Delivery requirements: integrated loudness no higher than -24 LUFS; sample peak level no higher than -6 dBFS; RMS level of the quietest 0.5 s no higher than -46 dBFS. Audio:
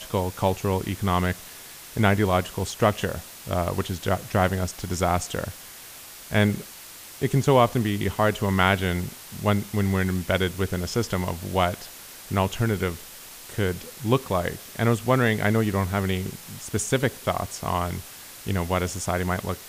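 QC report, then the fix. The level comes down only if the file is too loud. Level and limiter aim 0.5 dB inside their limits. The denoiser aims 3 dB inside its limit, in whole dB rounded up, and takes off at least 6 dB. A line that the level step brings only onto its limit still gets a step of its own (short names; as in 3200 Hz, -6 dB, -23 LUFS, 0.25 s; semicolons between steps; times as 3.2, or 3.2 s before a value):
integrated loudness -25.0 LUFS: OK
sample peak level -4.5 dBFS: fail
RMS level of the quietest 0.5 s -43 dBFS: fail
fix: denoiser 6 dB, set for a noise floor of -43 dBFS; limiter -6.5 dBFS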